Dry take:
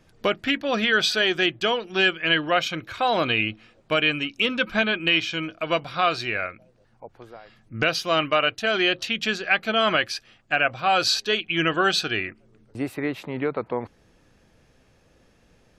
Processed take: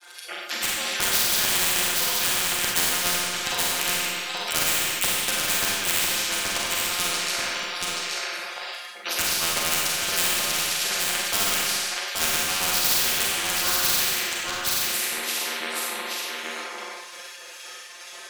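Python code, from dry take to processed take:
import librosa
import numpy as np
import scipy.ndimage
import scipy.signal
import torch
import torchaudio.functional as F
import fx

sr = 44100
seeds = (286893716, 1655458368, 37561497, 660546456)

p1 = scipy.signal.sosfilt(scipy.signal.cheby1(3, 1.0, 320.0, 'highpass', fs=sr, output='sos'), x)
p2 = fx.high_shelf(p1, sr, hz=5600.0, db=7.5)
p3 = fx.level_steps(p2, sr, step_db=21)
p4 = p2 + F.gain(torch.from_numpy(p3), -1.0).numpy()
p5 = fx.granulator(p4, sr, seeds[0], grain_ms=100.0, per_s=20.0, spray_ms=100.0, spread_st=0)
p6 = fx.filter_lfo_highpass(p5, sr, shape='saw_up', hz=4.6, low_hz=690.0, high_hz=2800.0, q=0.77)
p7 = fx.stretch_grains(p6, sr, factor=1.9, grain_ms=24.0)
p8 = 10.0 ** (-14.0 / 20.0) * (np.abs((p7 / 10.0 ** (-14.0 / 20.0) + 3.0) % 4.0 - 2.0) - 1.0)
p9 = fx.stretch_grains(p8, sr, factor=0.61, grain_ms=136.0)
p10 = p9 + 10.0 ** (-9.0 / 20.0) * np.pad(p9, (int(827 * sr / 1000.0), 0))[:len(p9)]
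p11 = fx.rev_schroeder(p10, sr, rt60_s=0.68, comb_ms=30, drr_db=-2.5)
y = fx.spectral_comp(p11, sr, ratio=4.0)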